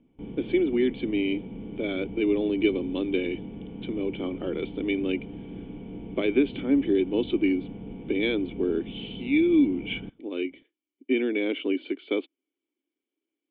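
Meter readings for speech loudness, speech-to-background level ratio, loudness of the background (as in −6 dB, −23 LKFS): −27.5 LKFS, 12.0 dB, −39.5 LKFS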